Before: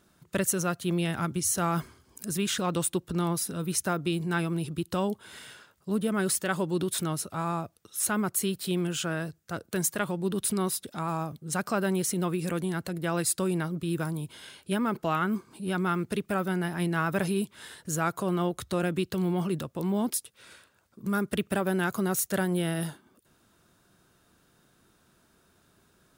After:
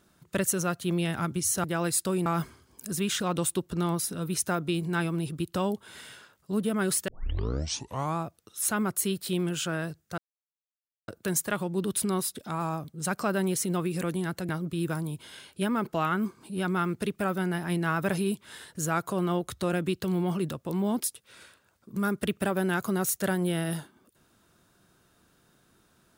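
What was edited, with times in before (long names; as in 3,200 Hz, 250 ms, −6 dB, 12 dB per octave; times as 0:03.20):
0:06.46: tape start 1.10 s
0:09.56: splice in silence 0.90 s
0:12.97–0:13.59: move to 0:01.64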